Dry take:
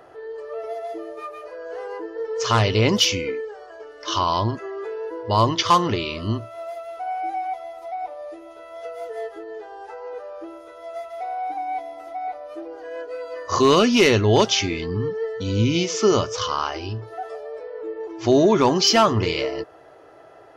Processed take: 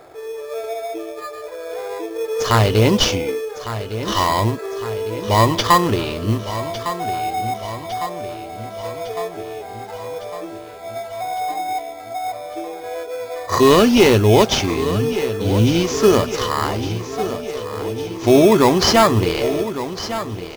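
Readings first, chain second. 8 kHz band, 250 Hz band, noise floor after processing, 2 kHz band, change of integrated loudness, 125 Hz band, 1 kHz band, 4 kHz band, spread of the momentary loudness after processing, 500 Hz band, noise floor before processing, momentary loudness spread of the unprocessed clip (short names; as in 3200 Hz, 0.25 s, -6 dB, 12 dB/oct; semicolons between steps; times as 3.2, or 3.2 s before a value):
+2.5 dB, +5.0 dB, -33 dBFS, +3.5 dB, +3.5 dB, +5.0 dB, +3.5 dB, +1.5 dB, 17 LU, +4.5 dB, -46 dBFS, 20 LU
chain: in parallel at -3 dB: sample-and-hold 15×; on the sum: feedback echo 1.156 s, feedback 60%, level -12 dB; modulation noise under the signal 29 dB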